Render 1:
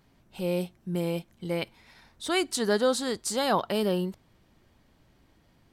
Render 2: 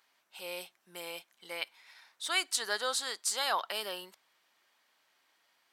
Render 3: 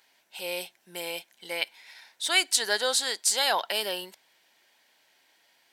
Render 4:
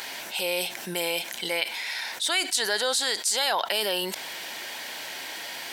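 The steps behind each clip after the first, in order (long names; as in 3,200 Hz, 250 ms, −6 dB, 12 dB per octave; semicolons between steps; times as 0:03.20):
high-pass filter 1,100 Hz 12 dB per octave
parametric band 1,200 Hz −14 dB 0.3 octaves; level +8 dB
envelope flattener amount 70%; level −4 dB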